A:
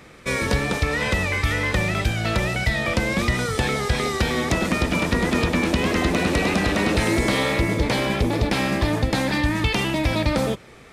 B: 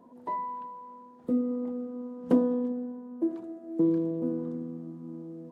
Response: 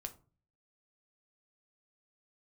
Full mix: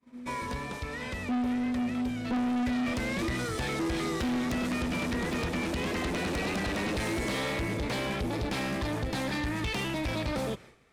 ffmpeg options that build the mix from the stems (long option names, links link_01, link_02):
-filter_complex "[0:a]volume=-6dB,afade=type=in:start_time=2.24:duration=0.71:silence=0.421697[link_01];[1:a]equalizer=frequency=240:width_type=o:width=0.3:gain=14.5,flanger=delay=9.6:depth=3.5:regen=67:speed=1.3:shape=triangular,volume=1dB[link_02];[link_01][link_02]amix=inputs=2:normalize=0,agate=range=-33dB:threshold=-43dB:ratio=3:detection=peak,asoftclip=type=tanh:threshold=-27dB"